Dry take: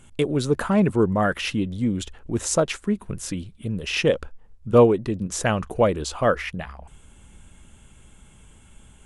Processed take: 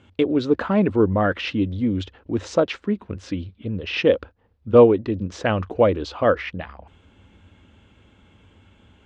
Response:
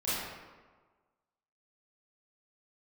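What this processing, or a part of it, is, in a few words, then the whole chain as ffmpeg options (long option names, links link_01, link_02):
guitar cabinet: -filter_complex "[0:a]highpass=82,equalizer=frequency=93:width_type=q:width=4:gain=9,equalizer=frequency=140:width_type=q:width=4:gain=-10,equalizer=frequency=290:width_type=q:width=4:gain=6,equalizer=frequency=510:width_type=q:width=4:gain=4,lowpass=frequency=4500:width=0.5412,lowpass=frequency=4500:width=1.3066,asettb=1/sr,asplit=3[link_01][link_02][link_03];[link_01]atrim=end=3.544[link_04];[link_02]atrim=start=3.54:end=3.98,asetpts=PTS-STARTPTS,afade=type=in:duration=0.004:curve=qsin,afade=type=out:start_time=0.436:duration=0.004:curve=qsin,equalizer=frequency=9700:width=1:gain=-9.5[link_05];[link_03]atrim=start=3.976[link_06];[link_04][link_05]acrossfade=duration=0.004:curve1=hsin:curve2=qsin[link_07];[link_07][link_06]acrossfade=duration=0.004:curve1=qsin:curve2=hsin"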